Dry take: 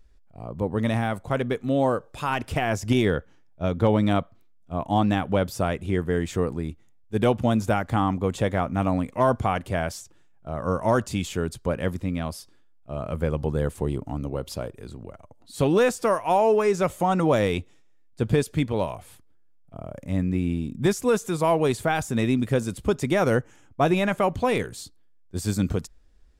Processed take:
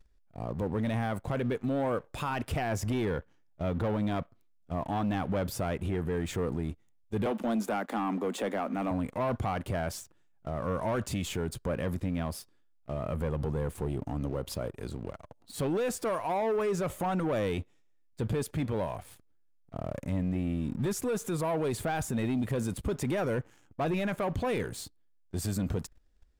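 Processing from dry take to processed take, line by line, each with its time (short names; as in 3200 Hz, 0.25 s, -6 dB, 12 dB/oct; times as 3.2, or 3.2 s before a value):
7.26–8.91 steep high-pass 200 Hz 72 dB/oct
whole clip: sample leveller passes 2; dynamic EQ 5800 Hz, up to -5 dB, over -44 dBFS, Q 0.72; limiter -18.5 dBFS; gain -6 dB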